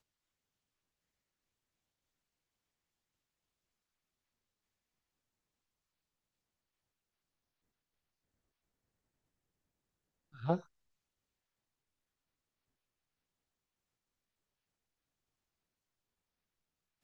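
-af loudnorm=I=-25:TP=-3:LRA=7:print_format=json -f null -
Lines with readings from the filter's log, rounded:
"input_i" : "-37.6",
"input_tp" : "-16.5",
"input_lra" : "0.0",
"input_thresh" : "-49.1",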